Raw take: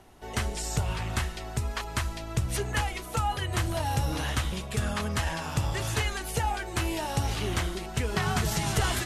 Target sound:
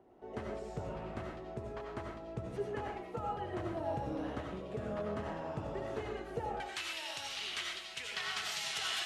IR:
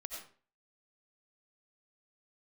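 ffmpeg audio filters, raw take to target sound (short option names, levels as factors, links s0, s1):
-filter_complex "[0:a]asetnsamples=n=441:p=0,asendcmd='6.6 bandpass f 3300',bandpass=f=390:t=q:w=1.2:csg=0[s0];[1:a]atrim=start_sample=2205[s1];[s0][s1]afir=irnorm=-1:irlink=0,volume=1.19"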